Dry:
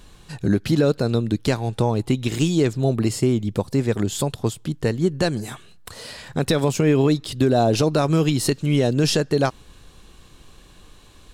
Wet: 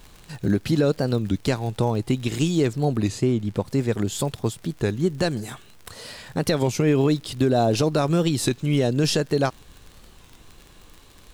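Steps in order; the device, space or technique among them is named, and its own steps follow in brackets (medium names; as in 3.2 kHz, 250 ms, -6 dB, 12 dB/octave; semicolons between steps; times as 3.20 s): warped LP (warped record 33 1/3 rpm, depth 160 cents; crackle 58 per s -31 dBFS; pink noise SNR 35 dB); 3.08–3.66 s: treble shelf 6.3 kHz -8 dB; trim -2 dB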